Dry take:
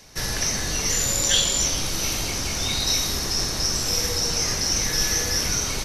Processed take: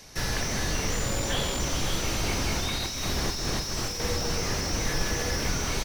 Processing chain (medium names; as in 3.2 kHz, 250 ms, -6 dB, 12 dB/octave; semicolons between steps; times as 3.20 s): 2.24–4.00 s: compressor with a negative ratio -26 dBFS, ratio -0.5; delay 559 ms -13 dB; slew-rate limiter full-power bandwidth 120 Hz